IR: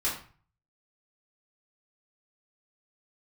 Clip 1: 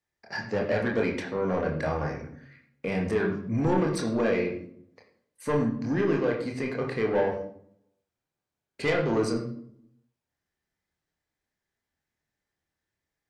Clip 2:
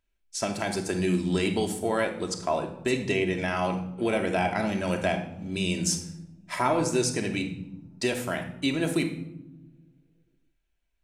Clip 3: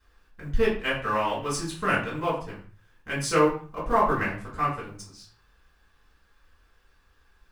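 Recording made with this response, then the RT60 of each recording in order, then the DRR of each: 3; 0.65 s, no single decay rate, 0.40 s; -0.5 dB, 3.5 dB, -8.0 dB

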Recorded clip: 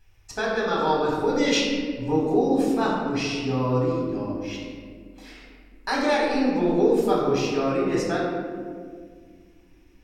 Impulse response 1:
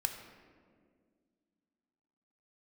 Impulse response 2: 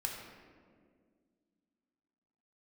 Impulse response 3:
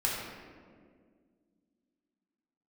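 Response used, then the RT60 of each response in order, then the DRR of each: 3; 1.9 s, 1.9 s, 1.9 s; 5.5 dB, 0.0 dB, -5.0 dB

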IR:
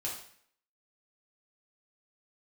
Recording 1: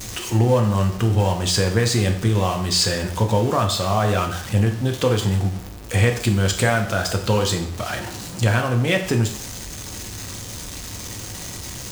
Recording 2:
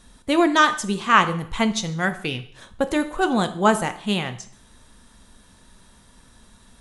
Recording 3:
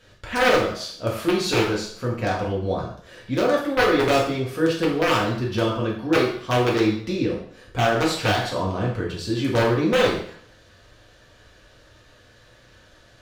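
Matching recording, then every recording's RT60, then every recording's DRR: 3; 0.60 s, 0.60 s, 0.60 s; 3.0 dB, 9.0 dB, -4.5 dB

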